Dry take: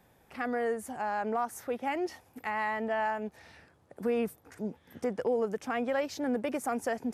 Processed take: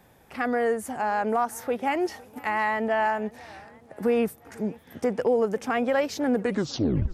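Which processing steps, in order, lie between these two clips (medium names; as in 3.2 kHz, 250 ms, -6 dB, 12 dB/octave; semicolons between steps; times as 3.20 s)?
tape stop on the ending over 0.80 s; modulated delay 505 ms, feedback 58%, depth 181 cents, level -23 dB; trim +6.5 dB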